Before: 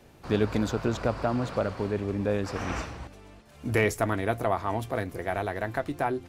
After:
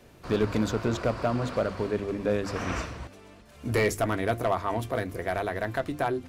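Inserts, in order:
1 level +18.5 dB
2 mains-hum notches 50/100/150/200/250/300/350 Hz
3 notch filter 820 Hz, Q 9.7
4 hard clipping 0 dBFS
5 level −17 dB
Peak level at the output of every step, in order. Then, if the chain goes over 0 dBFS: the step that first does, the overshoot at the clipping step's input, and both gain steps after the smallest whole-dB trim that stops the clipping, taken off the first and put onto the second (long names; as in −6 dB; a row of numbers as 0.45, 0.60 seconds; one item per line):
+8.0, +9.0, +8.5, 0.0, −17.0 dBFS
step 1, 8.5 dB
step 1 +9.5 dB, step 5 −8 dB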